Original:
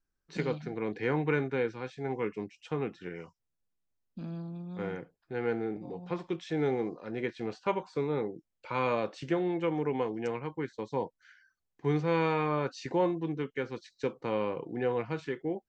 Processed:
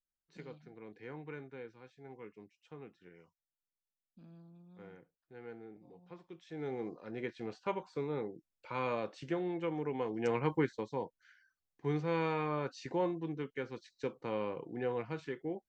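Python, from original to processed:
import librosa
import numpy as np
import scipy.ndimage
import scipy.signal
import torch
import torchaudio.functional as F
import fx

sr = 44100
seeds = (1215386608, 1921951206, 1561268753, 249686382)

y = fx.gain(x, sr, db=fx.line((6.33, -17.0), (6.9, -6.0), (9.98, -6.0), (10.53, 6.5), (10.95, -5.5)))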